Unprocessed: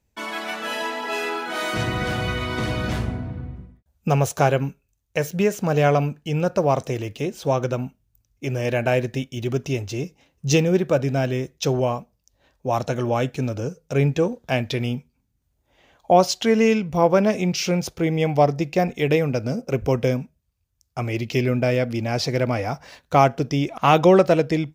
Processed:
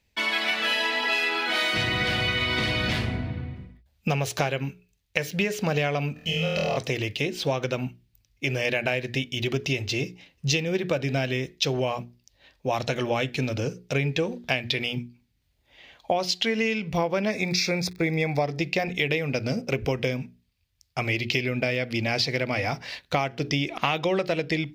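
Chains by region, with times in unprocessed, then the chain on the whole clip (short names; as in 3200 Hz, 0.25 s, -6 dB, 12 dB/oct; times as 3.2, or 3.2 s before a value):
6.13–6.77 comb 1.6 ms, depth 75% + compressor 3:1, threshold -31 dBFS + flutter echo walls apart 4.2 m, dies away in 1.3 s
17.29–18.43 expander -28 dBFS + crackle 110/s -38 dBFS + Butterworth band-stop 3000 Hz, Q 3.2
whole clip: band shelf 3000 Hz +10 dB; notches 60/120/180/240/300/360/420 Hz; compressor 10:1, threshold -21 dBFS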